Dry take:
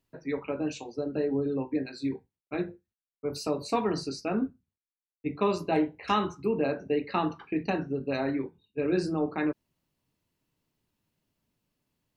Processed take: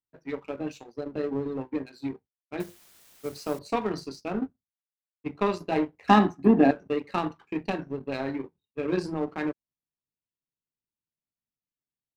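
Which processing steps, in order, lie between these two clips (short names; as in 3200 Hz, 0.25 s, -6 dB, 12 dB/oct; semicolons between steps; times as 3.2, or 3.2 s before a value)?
2.6–3.59 requantised 8-bit, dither triangular; power-law curve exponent 1.4; 6.08–6.71 small resonant body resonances 250/720/1700 Hz, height 16 dB, ringing for 25 ms; gain +3 dB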